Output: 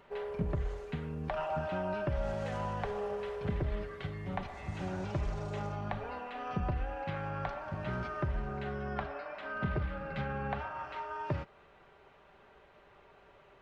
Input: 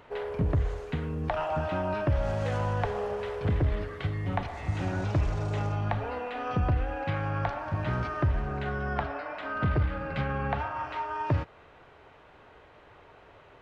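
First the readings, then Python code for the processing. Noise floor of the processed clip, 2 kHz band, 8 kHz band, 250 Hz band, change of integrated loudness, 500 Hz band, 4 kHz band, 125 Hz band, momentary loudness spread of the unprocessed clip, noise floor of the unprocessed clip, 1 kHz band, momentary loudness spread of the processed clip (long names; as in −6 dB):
−61 dBFS, −6.0 dB, can't be measured, −5.5 dB, −6.5 dB, −5.0 dB, −6.0 dB, −9.0 dB, 5 LU, −55 dBFS, −6.0 dB, 5 LU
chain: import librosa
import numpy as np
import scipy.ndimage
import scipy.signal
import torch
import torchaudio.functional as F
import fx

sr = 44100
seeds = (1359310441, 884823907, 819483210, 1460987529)

y = x + 0.46 * np.pad(x, (int(5.1 * sr / 1000.0), 0))[:len(x)]
y = y * 10.0 ** (-6.5 / 20.0)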